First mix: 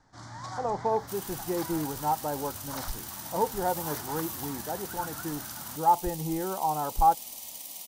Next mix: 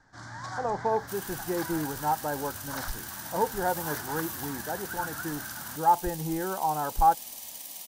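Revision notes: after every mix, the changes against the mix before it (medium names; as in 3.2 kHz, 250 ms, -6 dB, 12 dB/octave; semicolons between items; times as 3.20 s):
master: add peaking EQ 1.6 kHz +10.5 dB 0.3 oct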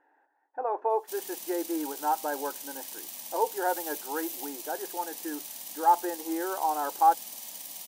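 speech: add brick-wall FIR high-pass 270 Hz; first sound: muted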